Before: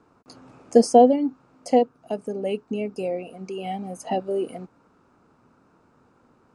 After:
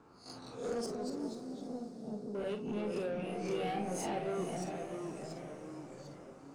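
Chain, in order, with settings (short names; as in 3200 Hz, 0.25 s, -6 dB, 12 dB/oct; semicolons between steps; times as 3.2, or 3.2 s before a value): spectral swells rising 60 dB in 0.34 s; compressor 2.5:1, threshold -27 dBFS, peak gain reduction 12 dB; limiter -22.5 dBFS, peak gain reduction 8.5 dB; 0.86–2.35 band-pass 160 Hz, Q 1.4; soft clip -31 dBFS, distortion -12 dB; reverb RT60 0.15 s, pre-delay 36 ms, DRR 6 dB; echoes that change speed 0.132 s, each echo -2 st, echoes 3, each echo -6 dB; 3.26–4.06 doubler 28 ms -3 dB; diffused feedback echo 0.468 s, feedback 56%, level -11.5 dB; gain -3.5 dB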